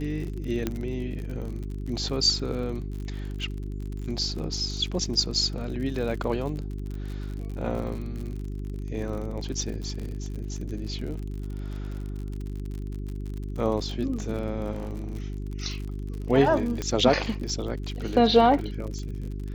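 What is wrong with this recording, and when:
surface crackle 56 per second −34 dBFS
mains hum 50 Hz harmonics 8 −33 dBFS
0:00.67: click −13 dBFS
0:14.71–0:15.14: clipping −28.5 dBFS
0:16.82: click −16 dBFS

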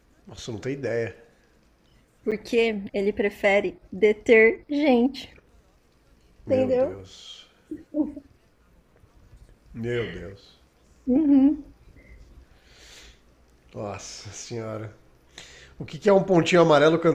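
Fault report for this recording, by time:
0:02.31–0:02.32: drop-out 7.1 ms

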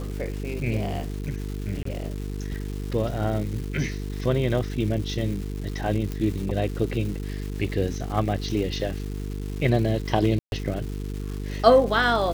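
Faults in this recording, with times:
mains buzz 50 Hz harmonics 9 −31 dBFS
surface crackle 550 per second −34 dBFS
0:01.83–0:01.85: drop-out 24 ms
0:06.12: click −17 dBFS
0:10.39–0:10.52: drop-out 131 ms

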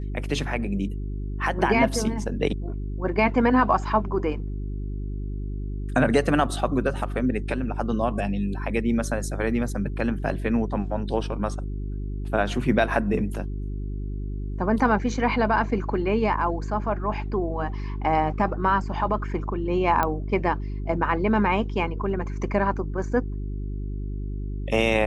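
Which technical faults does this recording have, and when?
mains hum 50 Hz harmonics 8 −30 dBFS
0:20.03: click −10 dBFS

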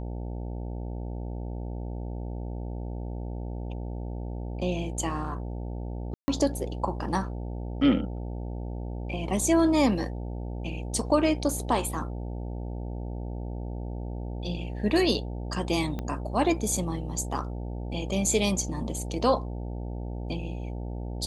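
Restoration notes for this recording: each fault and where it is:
mains buzz 60 Hz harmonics 15 −34 dBFS
0:06.14–0:06.28: drop-out 140 ms
0:15.99: click −20 dBFS

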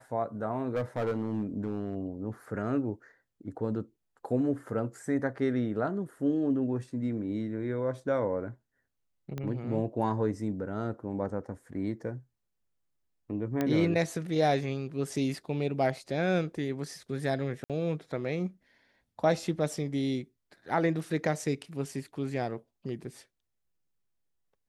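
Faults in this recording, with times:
0:00.75–0:01.95: clipping −26 dBFS
0:09.38: click −22 dBFS
0:13.61: click −16 dBFS
0:17.64–0:17.70: drop-out 57 ms

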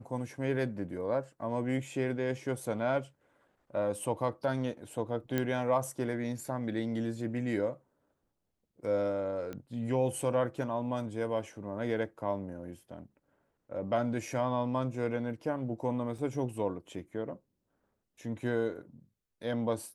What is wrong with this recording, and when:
0:05.38: click −17 dBFS
0:09.53: click −27 dBFS
0:16.18: drop-out 4.7 ms

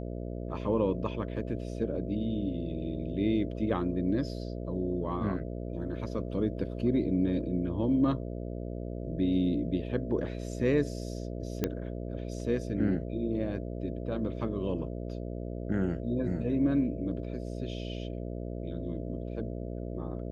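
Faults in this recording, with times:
mains buzz 60 Hz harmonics 11 −37 dBFS
0:11.64: click −14 dBFS

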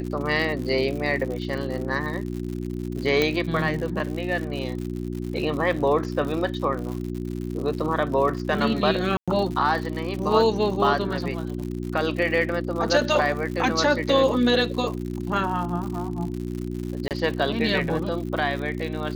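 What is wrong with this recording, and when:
surface crackle 110 per second −31 dBFS
mains hum 60 Hz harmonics 6 −30 dBFS
0:03.22: click −8 dBFS
0:09.17–0:09.28: drop-out 106 ms
0:17.08–0:17.11: drop-out 28 ms

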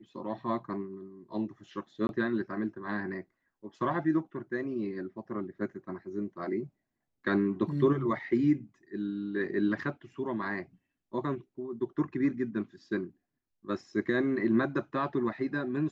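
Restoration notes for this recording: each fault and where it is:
0:02.07–0:02.09: drop-out 21 ms
0:09.82: drop-out 2.7 ms

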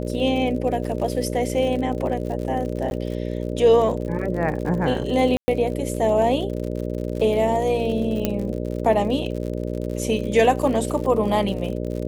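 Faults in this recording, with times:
mains buzz 60 Hz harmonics 10 −27 dBFS
surface crackle 64 per second −30 dBFS
0:02.90–0:02.91: drop-out
0:05.37–0:05.48: drop-out 110 ms
0:08.25: click −7 dBFS

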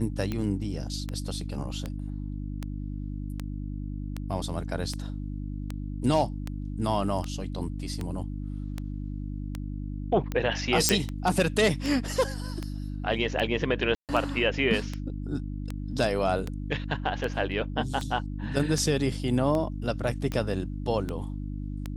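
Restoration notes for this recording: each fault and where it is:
mains hum 50 Hz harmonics 6 −34 dBFS
scratch tick 78 rpm −18 dBFS
0:10.89: click −3 dBFS
0:13.95–0:14.09: drop-out 138 ms

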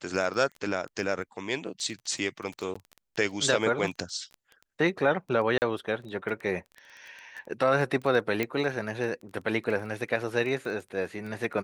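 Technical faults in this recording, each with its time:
surface crackle 11 per second −34 dBFS
0:02.74–0:02.75: drop-out
0:05.58–0:05.62: drop-out 39 ms
0:08.43: click −14 dBFS

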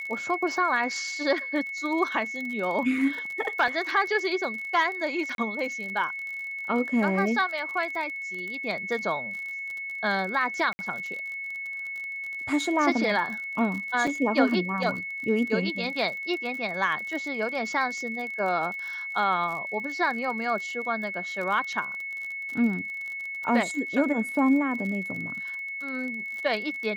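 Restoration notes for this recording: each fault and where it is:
surface crackle 39 per second −33 dBFS
whistle 2,200 Hz −32 dBFS
0:03.68: drop-out 2 ms
0:05.35–0:05.38: drop-out 32 ms
0:10.73–0:10.79: drop-out 60 ms
0:14.07: drop-out 4.4 ms

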